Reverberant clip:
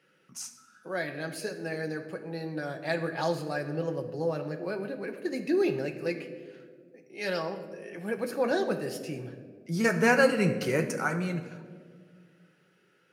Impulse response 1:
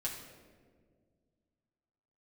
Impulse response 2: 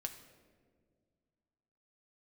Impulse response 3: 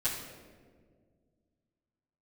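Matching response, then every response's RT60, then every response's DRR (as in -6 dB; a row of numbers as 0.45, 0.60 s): 2; 1.8, 1.8, 1.8 s; -4.5, 4.5, -12.5 dB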